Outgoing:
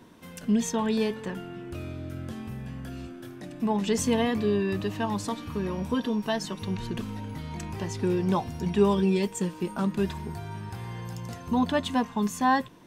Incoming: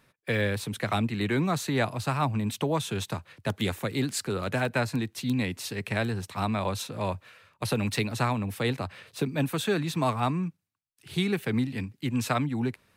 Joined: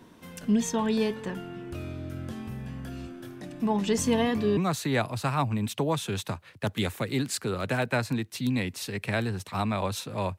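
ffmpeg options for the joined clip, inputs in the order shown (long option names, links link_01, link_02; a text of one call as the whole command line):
ffmpeg -i cue0.wav -i cue1.wav -filter_complex "[0:a]apad=whole_dur=10.38,atrim=end=10.38,atrim=end=4.572[link_01];[1:a]atrim=start=1.398:end=7.21[link_02];[link_01][link_02]acrossfade=duration=0.004:curve1=hsin:curve2=hsin" out.wav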